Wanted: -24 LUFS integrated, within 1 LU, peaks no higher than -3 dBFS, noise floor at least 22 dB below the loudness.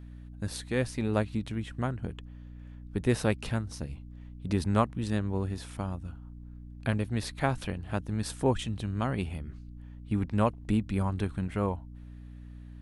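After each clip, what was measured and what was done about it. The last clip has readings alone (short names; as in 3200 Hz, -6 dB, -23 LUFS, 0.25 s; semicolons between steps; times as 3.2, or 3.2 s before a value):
hum 60 Hz; harmonics up to 300 Hz; hum level -43 dBFS; loudness -32.0 LUFS; peak -10.0 dBFS; loudness target -24.0 LUFS
-> notches 60/120/180/240/300 Hz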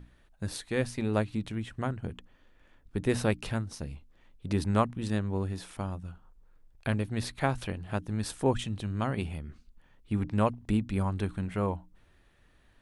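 hum none; loudness -32.5 LUFS; peak -10.5 dBFS; loudness target -24.0 LUFS
-> gain +8.5 dB; limiter -3 dBFS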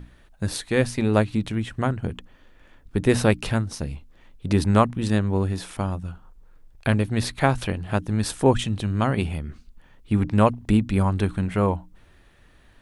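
loudness -24.0 LUFS; peak -3.0 dBFS; noise floor -54 dBFS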